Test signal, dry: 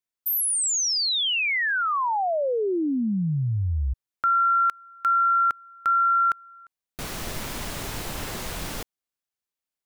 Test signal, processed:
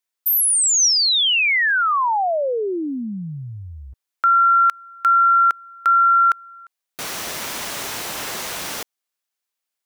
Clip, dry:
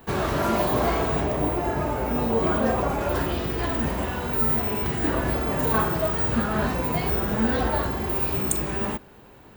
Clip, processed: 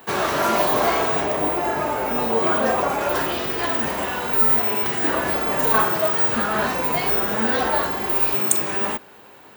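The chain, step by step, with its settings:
high-pass filter 630 Hz 6 dB per octave
dynamic equaliser 5,900 Hz, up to +3 dB, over −55 dBFS, Q 7.9
level +7 dB

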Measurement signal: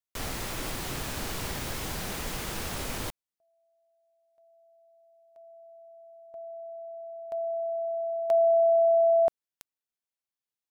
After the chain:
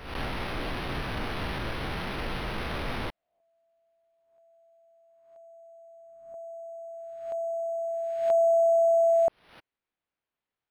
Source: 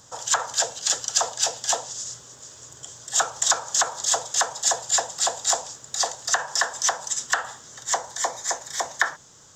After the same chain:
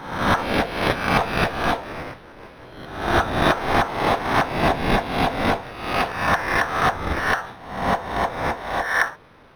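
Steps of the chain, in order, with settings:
peak hold with a rise ahead of every peak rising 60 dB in 0.78 s
linearly interpolated sample-rate reduction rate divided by 6×

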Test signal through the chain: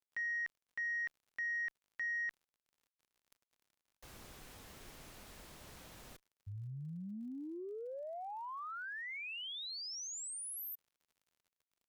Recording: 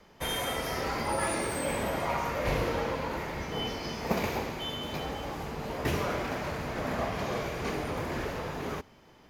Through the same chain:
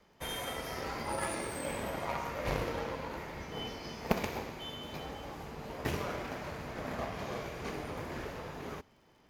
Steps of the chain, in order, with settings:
surface crackle 61 per second −53 dBFS
harmonic generator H 3 −12 dB, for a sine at −12.5 dBFS
level +4.5 dB

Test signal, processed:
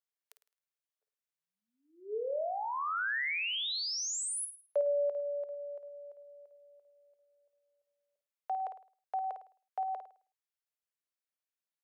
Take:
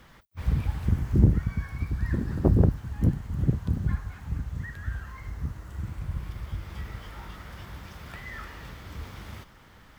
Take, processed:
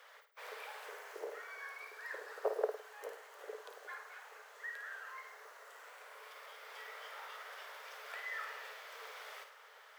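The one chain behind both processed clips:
Chebyshev high-pass with heavy ripple 420 Hz, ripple 3 dB
flutter between parallel walls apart 9.1 metres, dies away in 0.41 s
level −1.5 dB

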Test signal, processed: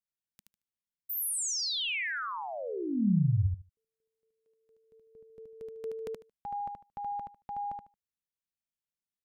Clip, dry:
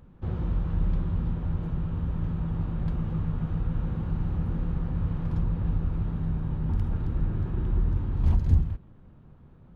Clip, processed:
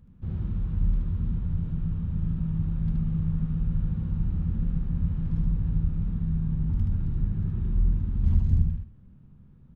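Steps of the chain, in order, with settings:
drawn EQ curve 140 Hz 0 dB, 200 Hz +2 dB, 310 Hz −8 dB, 740 Hz −13 dB, 2,300 Hz −7 dB
repeating echo 75 ms, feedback 17%, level −3 dB
level −1.5 dB

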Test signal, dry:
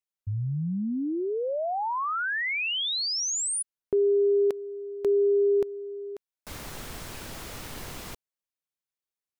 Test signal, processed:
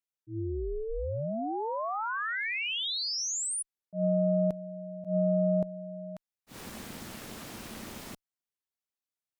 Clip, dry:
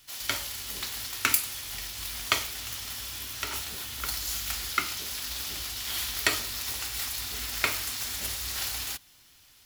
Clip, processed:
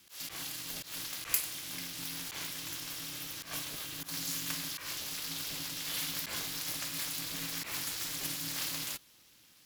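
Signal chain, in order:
volume swells 122 ms
ring modulation 220 Hz
harmonic generator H 6 −44 dB, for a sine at −8 dBFS
level −1 dB

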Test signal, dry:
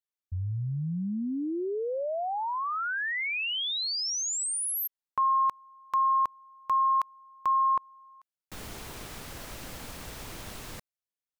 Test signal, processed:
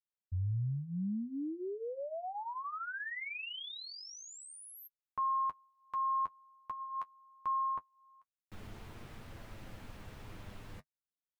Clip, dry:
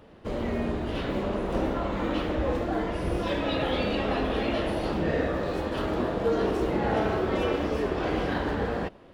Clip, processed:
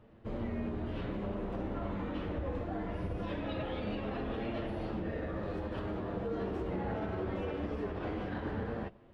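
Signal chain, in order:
bass and treble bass +6 dB, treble −11 dB
brickwall limiter −18.5 dBFS
flanger 0.22 Hz, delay 8.7 ms, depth 2.1 ms, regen −31%
level −6 dB

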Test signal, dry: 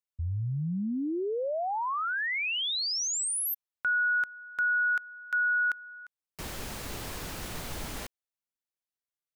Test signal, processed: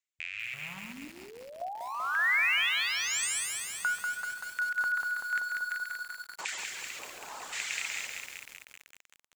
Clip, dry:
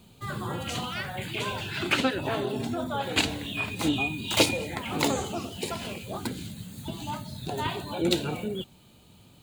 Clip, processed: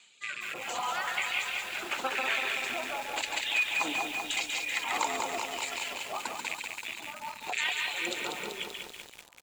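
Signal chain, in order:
loose part that buzzes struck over −36 dBFS, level −27 dBFS
high-pass filter 290 Hz 6 dB per octave
tape delay 61 ms, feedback 52%, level −8 dB, low-pass 1,500 Hz
auto-filter band-pass square 0.93 Hz 930–2,100 Hz
low-pass with resonance 7,400 Hz, resonance Q 6.5
high-shelf EQ 2,200 Hz +8.5 dB
single-tap delay 138 ms −5.5 dB
downward compressor 6 to 1, threshold −32 dBFS
rotating-speaker cabinet horn 0.75 Hz
reverb reduction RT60 1.1 s
buffer that repeats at 0:05.08, samples 512, times 9
feedback echo at a low word length 192 ms, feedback 80%, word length 9 bits, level −4 dB
level +7.5 dB

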